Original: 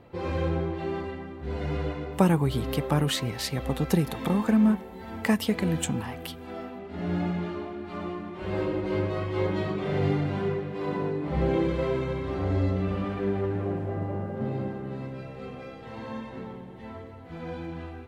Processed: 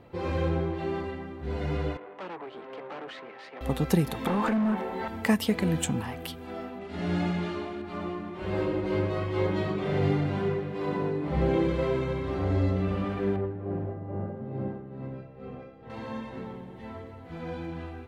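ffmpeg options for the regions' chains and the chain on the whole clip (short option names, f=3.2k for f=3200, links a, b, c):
-filter_complex "[0:a]asettb=1/sr,asplit=3[a][b][c];[a]atrim=end=1.974[d];[b]atrim=start=1.97:end=3.61,asetpts=PTS-STARTPTS,afade=t=in:d=0.004:c=qsin,afade=t=out:st=1.636:d=0.004:c=qsin,acrossover=split=340 2400:gain=0.0891 1 0.224[e][f][g];[e][f][g]amix=inputs=3:normalize=0,aeval=exprs='(tanh(56.2*val(0)+0.8)-tanh(0.8))/56.2':c=same,highpass=200,lowpass=3.3k[h];[c]atrim=start=3.606[i];[d][h]acrossfade=d=0.004:c1=hsin:c2=qsin[j];[j][i]acrossfade=d=0.004:c1=qsin:c2=hsin,asettb=1/sr,asplit=3[k][l][m];[k]atrim=end=4.274[n];[l]atrim=start=4.27:end=5.08,asetpts=PTS-STARTPTS,afade=t=in:d=0.004:c=qsin,afade=t=out:st=0.806:d=0.004:c=qsin,acompressor=threshold=-27dB:ratio=4:attack=3.2:release=140:knee=1:detection=peak,asoftclip=type=hard:threshold=-26dB,asplit=2[o][p];[p]highpass=f=720:p=1,volume=21dB,asoftclip=type=tanh:threshold=-13.5dB[q];[o][q]amix=inputs=2:normalize=0,lowpass=f=1.5k:p=1,volume=-6dB[r];[m]atrim=start=5.076[s];[n][r]acrossfade=d=0.004:c1=hsin:c2=qsin[t];[t][s]acrossfade=d=0.004:c1=qsin:c2=hsin,asettb=1/sr,asplit=3[u][v][w];[u]atrim=end=6.814[x];[v]atrim=start=6.81:end=7.82,asetpts=PTS-STARTPTS,afade=t=in:d=0.004:c=qsin,afade=t=out:st=1.006:d=0.004:c=qsin,lowpass=f=11k:w=0.5412,lowpass=f=11k:w=1.3066,highshelf=f=2.2k:g=8.5[y];[w]atrim=start=7.816[z];[x][y]acrossfade=d=0.004:c1=hsin:c2=qsin[aa];[aa][z]acrossfade=d=0.004:c1=qsin:c2=hsin,asettb=1/sr,asplit=3[ab][ac][ad];[ab]atrim=end=13.364[ae];[ac]atrim=start=13.36:end=15.9,asetpts=PTS-STARTPTS,afade=t=in:d=0.004:c=qsin,afade=t=out:st=2.536:d=0.004:c=qsin,lowpass=f=1.1k:p=1,tremolo=f=2.3:d=0.6[af];[ad]atrim=start=15.896[ag];[ae][af]acrossfade=d=0.004:c1=hsin:c2=qsin[ah];[ah][ag]acrossfade=d=0.004:c1=qsin:c2=hsin"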